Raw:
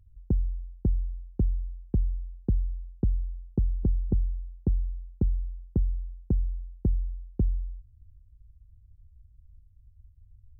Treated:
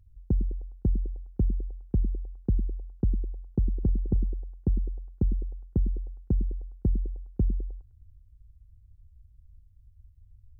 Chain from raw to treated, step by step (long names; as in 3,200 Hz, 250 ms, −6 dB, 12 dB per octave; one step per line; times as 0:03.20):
echo through a band-pass that steps 103 ms, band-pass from 260 Hz, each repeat 0.7 octaves, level −7 dB